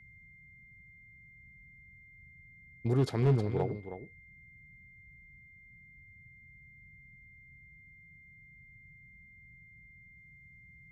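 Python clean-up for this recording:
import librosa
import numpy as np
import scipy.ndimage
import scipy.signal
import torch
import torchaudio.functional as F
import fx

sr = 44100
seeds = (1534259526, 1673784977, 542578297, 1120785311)

y = fx.fix_declip(x, sr, threshold_db=-20.0)
y = fx.notch(y, sr, hz=2100.0, q=30.0)
y = fx.noise_reduce(y, sr, print_start_s=5.47, print_end_s=5.97, reduce_db=24.0)
y = fx.fix_echo_inverse(y, sr, delay_ms=316, level_db=-10.5)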